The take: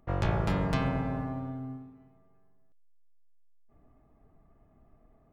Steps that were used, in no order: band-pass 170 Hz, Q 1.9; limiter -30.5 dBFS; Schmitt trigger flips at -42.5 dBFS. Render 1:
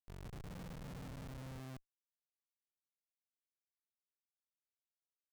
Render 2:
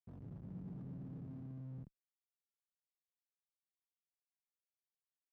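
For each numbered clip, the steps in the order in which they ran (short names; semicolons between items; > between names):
limiter > band-pass > Schmitt trigger; limiter > Schmitt trigger > band-pass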